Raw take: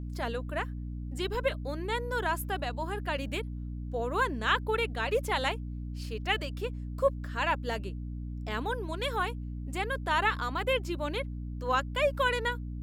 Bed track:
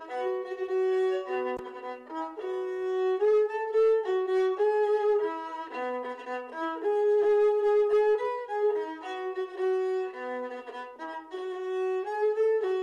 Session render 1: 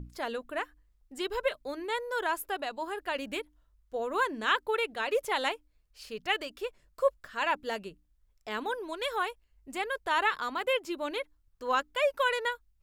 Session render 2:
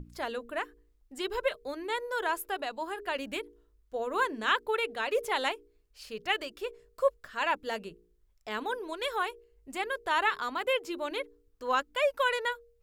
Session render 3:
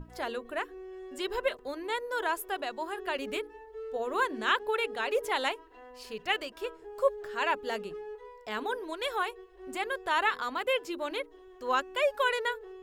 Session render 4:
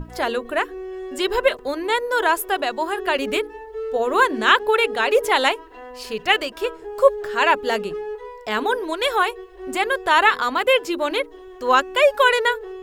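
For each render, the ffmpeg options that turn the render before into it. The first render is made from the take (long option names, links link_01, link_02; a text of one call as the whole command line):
ffmpeg -i in.wav -af "bandreject=frequency=60:width_type=h:width=6,bandreject=frequency=120:width_type=h:width=6,bandreject=frequency=180:width_type=h:width=6,bandreject=frequency=240:width_type=h:width=6,bandreject=frequency=300:width_type=h:width=6" out.wav
ffmpeg -i in.wav -af "bandreject=frequency=58.72:width_type=h:width=4,bandreject=frequency=117.44:width_type=h:width=4,bandreject=frequency=176.16:width_type=h:width=4,bandreject=frequency=234.88:width_type=h:width=4,bandreject=frequency=293.6:width_type=h:width=4,bandreject=frequency=352.32:width_type=h:width=4,bandreject=frequency=411.04:width_type=h:width=4,bandreject=frequency=469.76:width_type=h:width=4" out.wav
ffmpeg -i in.wav -i bed.wav -filter_complex "[1:a]volume=-18dB[link_01];[0:a][link_01]amix=inputs=2:normalize=0" out.wav
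ffmpeg -i in.wav -af "volume=12dB" out.wav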